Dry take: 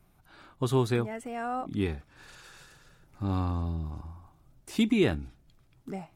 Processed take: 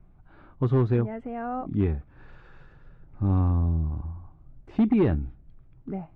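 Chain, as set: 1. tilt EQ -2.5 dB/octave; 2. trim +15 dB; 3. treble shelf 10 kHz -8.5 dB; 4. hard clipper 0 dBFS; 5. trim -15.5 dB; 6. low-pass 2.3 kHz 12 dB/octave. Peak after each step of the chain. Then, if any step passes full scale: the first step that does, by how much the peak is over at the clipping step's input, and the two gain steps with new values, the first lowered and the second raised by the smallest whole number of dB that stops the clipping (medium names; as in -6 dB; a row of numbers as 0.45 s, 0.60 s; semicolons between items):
-8.5 dBFS, +6.5 dBFS, +6.5 dBFS, 0.0 dBFS, -15.5 dBFS, -15.5 dBFS; step 2, 6.5 dB; step 2 +8 dB, step 5 -8.5 dB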